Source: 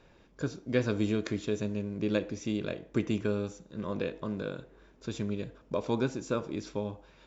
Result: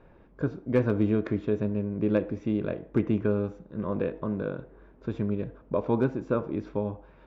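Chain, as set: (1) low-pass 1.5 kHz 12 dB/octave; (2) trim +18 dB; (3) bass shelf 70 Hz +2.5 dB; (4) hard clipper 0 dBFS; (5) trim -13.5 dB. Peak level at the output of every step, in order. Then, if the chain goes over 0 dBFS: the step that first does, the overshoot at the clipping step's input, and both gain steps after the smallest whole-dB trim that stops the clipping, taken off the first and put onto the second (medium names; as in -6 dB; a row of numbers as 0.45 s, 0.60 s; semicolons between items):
-14.5 dBFS, +3.5 dBFS, +3.5 dBFS, 0.0 dBFS, -13.5 dBFS; step 2, 3.5 dB; step 2 +14 dB, step 5 -9.5 dB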